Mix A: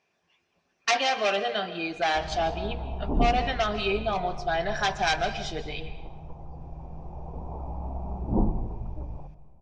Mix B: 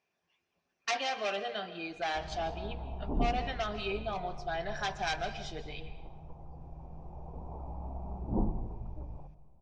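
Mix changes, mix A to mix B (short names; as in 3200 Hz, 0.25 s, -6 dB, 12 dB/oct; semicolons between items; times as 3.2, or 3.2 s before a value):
speech -8.5 dB; background -6.5 dB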